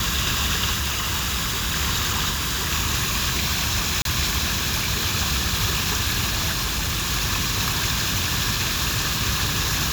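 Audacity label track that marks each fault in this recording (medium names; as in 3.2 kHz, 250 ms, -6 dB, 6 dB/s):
0.730000	1.770000	clipped -20.5 dBFS
2.290000	2.720000	clipped -21 dBFS
4.020000	4.050000	dropout 32 ms
6.520000	7.110000	clipped -20.5 dBFS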